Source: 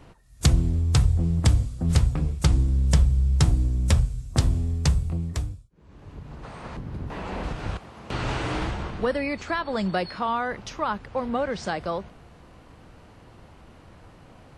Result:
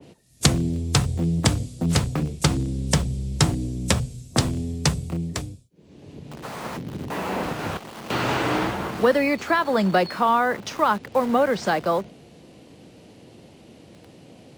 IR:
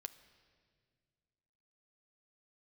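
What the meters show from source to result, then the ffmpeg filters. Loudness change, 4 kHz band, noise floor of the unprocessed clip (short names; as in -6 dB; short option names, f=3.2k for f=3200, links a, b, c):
+2.0 dB, +6.5 dB, -51 dBFS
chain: -filter_complex "[0:a]highpass=170,acrossover=split=260|680|2200[a][b][c][d];[c]acrusher=bits=7:mix=0:aa=0.000001[e];[a][b][e][d]amix=inputs=4:normalize=0,adynamicequalizer=threshold=0.00891:dfrequency=2200:dqfactor=0.7:tfrequency=2200:tqfactor=0.7:attack=5:release=100:ratio=0.375:range=2.5:mode=cutabove:tftype=highshelf,volume=7dB"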